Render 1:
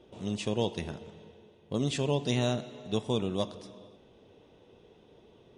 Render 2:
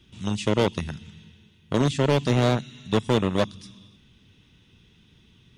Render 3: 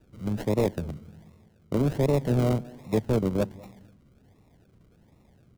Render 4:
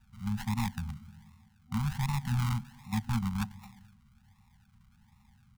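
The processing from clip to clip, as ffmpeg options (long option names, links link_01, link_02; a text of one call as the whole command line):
ffmpeg -i in.wav -filter_complex "[0:a]acrossover=split=230|1400[link_01][link_02][link_03];[link_02]acrusher=bits=4:mix=0:aa=0.5[link_04];[link_03]alimiter=level_in=7.5dB:limit=-24dB:level=0:latency=1:release=295,volume=-7.5dB[link_05];[link_01][link_04][link_05]amix=inputs=3:normalize=0,asoftclip=type=hard:threshold=-21dB,volume=8.5dB" out.wav
ffmpeg -i in.wav -filter_complex "[0:a]acrossover=split=150|820[link_01][link_02][link_03];[link_02]aecho=1:1:204:0.0794[link_04];[link_03]acrusher=samples=40:mix=1:aa=0.000001:lfo=1:lforange=24:lforate=1.3[link_05];[link_01][link_04][link_05]amix=inputs=3:normalize=0,volume=-2dB" out.wav
ffmpeg -i in.wav -af "afftfilt=real='re*(1-between(b*sr/4096,240,760))':imag='im*(1-between(b*sr/4096,240,760))':win_size=4096:overlap=0.75,equalizer=frequency=160:width_type=o:width=1.3:gain=-5" out.wav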